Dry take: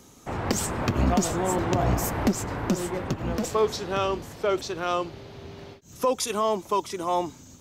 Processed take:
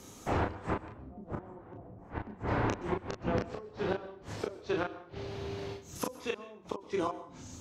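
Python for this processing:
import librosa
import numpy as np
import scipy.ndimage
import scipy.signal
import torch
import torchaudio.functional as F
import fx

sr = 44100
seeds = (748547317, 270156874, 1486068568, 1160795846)

p1 = fx.env_lowpass_down(x, sr, base_hz=490.0, full_db=-18.5)
p2 = fx.hum_notches(p1, sr, base_hz=60, count=4)
p3 = fx.gate_flip(p2, sr, shuts_db=-20.0, range_db=-25)
p4 = p3 + fx.room_early_taps(p3, sr, ms=(28, 38), db=(-6.0, -6.5), dry=0)
y = fx.rev_plate(p4, sr, seeds[0], rt60_s=0.53, hf_ratio=0.8, predelay_ms=110, drr_db=16.0)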